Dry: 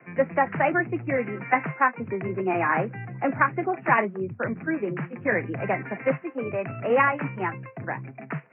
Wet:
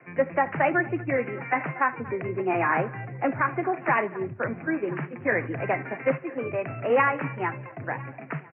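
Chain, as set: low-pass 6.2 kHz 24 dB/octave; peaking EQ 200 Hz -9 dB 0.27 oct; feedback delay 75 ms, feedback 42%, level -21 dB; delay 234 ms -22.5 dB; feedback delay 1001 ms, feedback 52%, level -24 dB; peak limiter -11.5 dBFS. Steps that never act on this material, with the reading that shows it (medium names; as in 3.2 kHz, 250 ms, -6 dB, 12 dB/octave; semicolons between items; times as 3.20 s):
low-pass 6.2 kHz: input has nothing above 2.7 kHz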